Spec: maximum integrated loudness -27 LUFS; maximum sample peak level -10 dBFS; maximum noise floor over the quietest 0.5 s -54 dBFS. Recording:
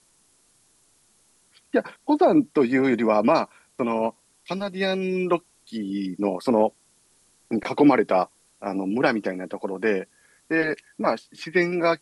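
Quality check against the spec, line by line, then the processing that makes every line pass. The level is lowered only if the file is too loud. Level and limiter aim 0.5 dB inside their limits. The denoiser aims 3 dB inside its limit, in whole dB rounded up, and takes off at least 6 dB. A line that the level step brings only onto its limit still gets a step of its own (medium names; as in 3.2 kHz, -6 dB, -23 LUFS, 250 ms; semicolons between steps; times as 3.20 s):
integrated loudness -23.5 LUFS: fail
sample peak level -6.0 dBFS: fail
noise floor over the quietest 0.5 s -62 dBFS: pass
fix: trim -4 dB; peak limiter -10.5 dBFS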